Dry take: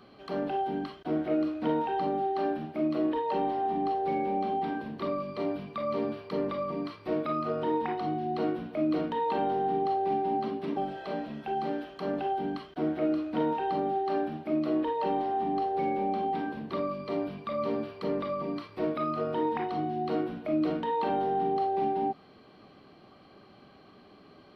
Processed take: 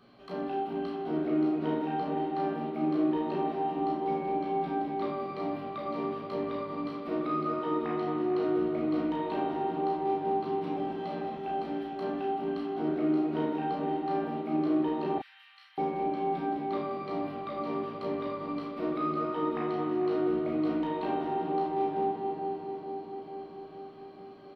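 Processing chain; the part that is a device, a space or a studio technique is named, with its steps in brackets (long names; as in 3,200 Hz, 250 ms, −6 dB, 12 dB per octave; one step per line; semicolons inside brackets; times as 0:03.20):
dub delay into a spring reverb (feedback echo with a low-pass in the loop 444 ms, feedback 69%, low-pass 1,700 Hz, level −7.5 dB; spring reverb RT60 3.3 s, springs 38/52 ms, chirp 25 ms, DRR 1 dB)
0:15.18–0:15.78: Butterworth high-pass 1,600 Hz 36 dB per octave
ambience of single reflections 17 ms −6 dB, 33 ms −4 dB
level −6 dB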